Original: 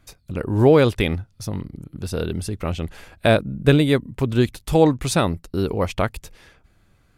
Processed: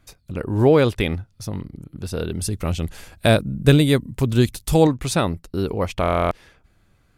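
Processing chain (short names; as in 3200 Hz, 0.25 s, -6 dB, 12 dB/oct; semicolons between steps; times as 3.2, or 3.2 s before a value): 2.41–4.87 tone controls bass +4 dB, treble +9 dB; stuck buffer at 6.01, samples 1024, times 12; gain -1 dB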